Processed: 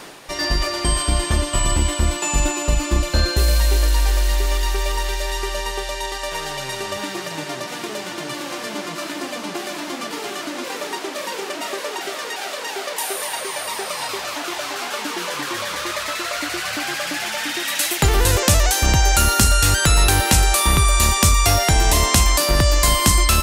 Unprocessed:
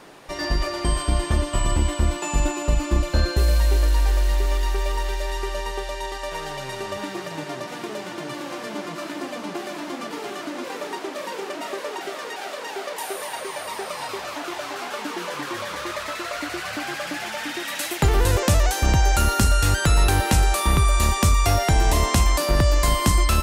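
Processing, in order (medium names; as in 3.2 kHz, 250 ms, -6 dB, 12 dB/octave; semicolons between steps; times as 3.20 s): treble shelf 2.1 kHz +8 dB; reverse; upward compressor, threshold -31 dBFS; reverse; trim +1.5 dB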